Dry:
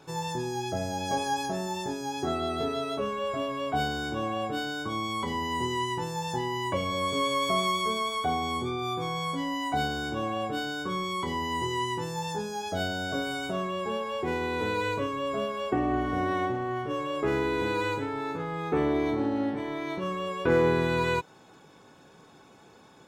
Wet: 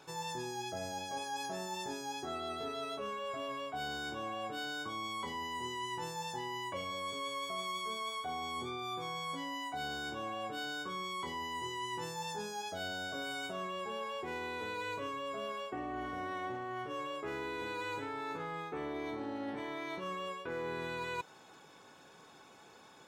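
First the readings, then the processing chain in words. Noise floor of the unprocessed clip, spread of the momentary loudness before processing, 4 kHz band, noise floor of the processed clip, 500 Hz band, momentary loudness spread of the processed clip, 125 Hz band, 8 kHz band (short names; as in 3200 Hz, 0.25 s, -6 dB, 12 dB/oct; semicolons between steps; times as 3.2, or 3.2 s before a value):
-54 dBFS, 6 LU, -7.0 dB, -58 dBFS, -11.5 dB, 2 LU, -15.5 dB, -6.0 dB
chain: low shelf 430 Hz -10 dB; reverse; compressor 6:1, threshold -37 dBFS, peak gain reduction 13 dB; reverse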